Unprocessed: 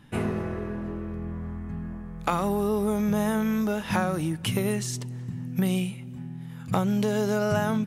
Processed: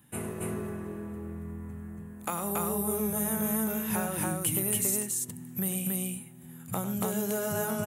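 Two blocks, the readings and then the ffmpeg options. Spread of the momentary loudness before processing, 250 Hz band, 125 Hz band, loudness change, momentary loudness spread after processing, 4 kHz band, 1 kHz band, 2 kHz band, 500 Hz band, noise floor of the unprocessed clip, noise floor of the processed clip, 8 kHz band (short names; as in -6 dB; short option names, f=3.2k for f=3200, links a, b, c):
11 LU, -6.5 dB, -7.0 dB, -3.0 dB, 14 LU, -6.0 dB, -6.0 dB, -6.0 dB, -6.0 dB, -39 dBFS, -47 dBFS, +9.0 dB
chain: -filter_complex "[0:a]highpass=62,acrossover=split=380[a][b];[b]aexciter=amount=6.7:drive=7.2:freq=7.4k[c];[a][c]amix=inputs=2:normalize=0,aecho=1:1:99.13|279.9:0.282|0.891,volume=-8.5dB"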